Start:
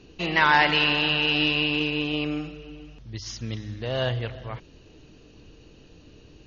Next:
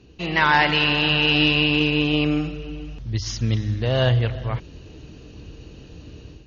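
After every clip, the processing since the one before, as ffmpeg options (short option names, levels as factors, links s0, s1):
-af "highpass=53,lowshelf=f=120:g=11.5,dynaudnorm=f=180:g=3:m=2.82,volume=0.708"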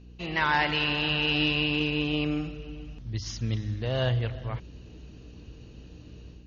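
-af "aeval=exprs='val(0)+0.01*(sin(2*PI*60*n/s)+sin(2*PI*2*60*n/s)/2+sin(2*PI*3*60*n/s)/3+sin(2*PI*4*60*n/s)/4+sin(2*PI*5*60*n/s)/5)':c=same,volume=0.422"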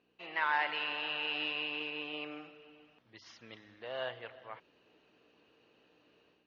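-af "highpass=640,lowpass=2500,volume=0.562"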